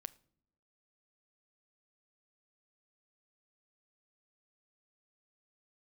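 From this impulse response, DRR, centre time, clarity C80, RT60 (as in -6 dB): 15.0 dB, 2 ms, 24.5 dB, not exponential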